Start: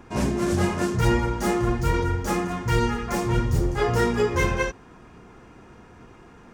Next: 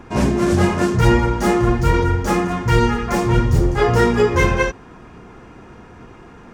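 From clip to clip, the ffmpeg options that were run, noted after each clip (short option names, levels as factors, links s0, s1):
-af "highshelf=f=5900:g=-6,volume=2.24"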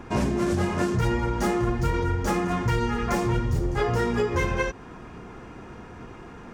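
-af "acompressor=threshold=0.1:ratio=6,volume=0.891"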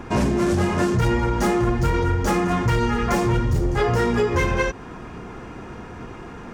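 -af "asoftclip=type=tanh:threshold=0.15,volume=1.88"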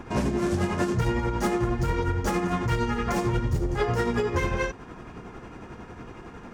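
-af "tremolo=f=11:d=0.42,volume=0.668"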